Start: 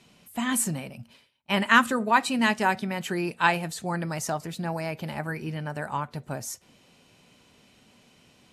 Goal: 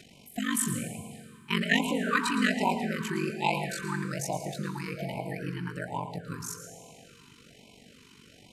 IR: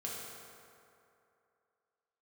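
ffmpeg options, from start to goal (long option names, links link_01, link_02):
-filter_complex "[0:a]aeval=exprs='val(0)*sin(2*PI*24*n/s)':channel_layout=same,acompressor=mode=upward:threshold=-46dB:ratio=2.5,asplit=2[link_01][link_02];[1:a]atrim=start_sample=2205,adelay=113[link_03];[link_02][link_03]afir=irnorm=-1:irlink=0,volume=-7.5dB[link_04];[link_01][link_04]amix=inputs=2:normalize=0,afftfilt=real='re*(1-between(b*sr/1024,600*pow(1500/600,0.5+0.5*sin(2*PI*1.2*pts/sr))/1.41,600*pow(1500/600,0.5+0.5*sin(2*PI*1.2*pts/sr))*1.41))':imag='im*(1-between(b*sr/1024,600*pow(1500/600,0.5+0.5*sin(2*PI*1.2*pts/sr))/1.41,600*pow(1500/600,0.5+0.5*sin(2*PI*1.2*pts/sr))*1.41))':win_size=1024:overlap=0.75"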